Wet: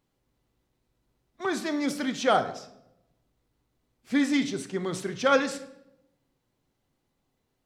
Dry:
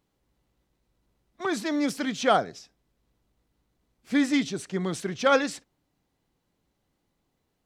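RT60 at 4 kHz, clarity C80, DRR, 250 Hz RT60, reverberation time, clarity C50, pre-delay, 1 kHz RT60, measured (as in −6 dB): 0.60 s, 15.5 dB, 8.0 dB, 1.1 s, 0.80 s, 12.5 dB, 8 ms, 0.70 s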